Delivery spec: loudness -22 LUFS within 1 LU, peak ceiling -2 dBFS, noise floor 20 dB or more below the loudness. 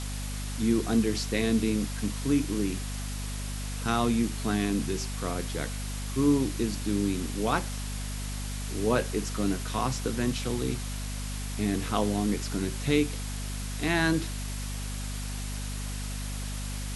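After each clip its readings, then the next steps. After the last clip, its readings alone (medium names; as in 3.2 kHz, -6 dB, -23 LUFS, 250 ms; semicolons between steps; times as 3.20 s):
hum 50 Hz; highest harmonic 250 Hz; hum level -32 dBFS; noise floor -34 dBFS; noise floor target -50 dBFS; loudness -30.0 LUFS; peak level -10.0 dBFS; loudness target -22.0 LUFS
-> de-hum 50 Hz, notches 5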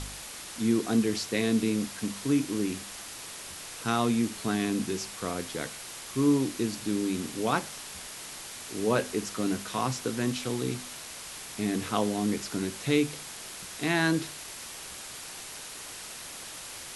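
hum not found; noise floor -42 dBFS; noise floor target -51 dBFS
-> noise reduction 9 dB, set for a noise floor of -42 dBFS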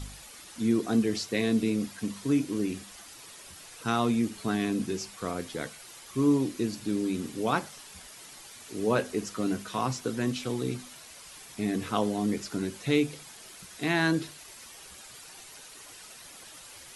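noise floor -49 dBFS; noise floor target -50 dBFS
-> noise reduction 6 dB, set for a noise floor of -49 dBFS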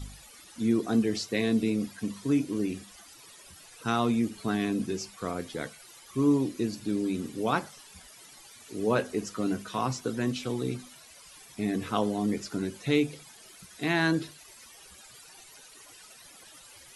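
noise floor -52 dBFS; loudness -29.5 LUFS; peak level -11.0 dBFS; loudness target -22.0 LUFS
-> trim +7.5 dB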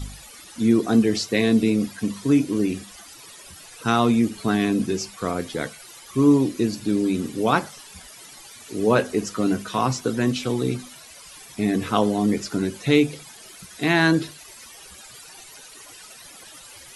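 loudness -22.0 LUFS; peak level -3.5 dBFS; noise floor -45 dBFS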